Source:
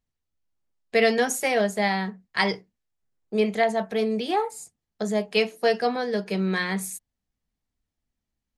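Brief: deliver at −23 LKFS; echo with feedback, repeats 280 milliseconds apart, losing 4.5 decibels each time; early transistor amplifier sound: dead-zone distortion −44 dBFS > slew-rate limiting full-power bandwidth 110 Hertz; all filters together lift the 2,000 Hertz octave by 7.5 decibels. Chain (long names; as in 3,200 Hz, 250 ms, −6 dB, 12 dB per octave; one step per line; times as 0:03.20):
parametric band 2,000 Hz +8.5 dB
repeating echo 280 ms, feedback 60%, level −4.5 dB
dead-zone distortion −44 dBFS
slew-rate limiting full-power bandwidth 110 Hz
level +1.5 dB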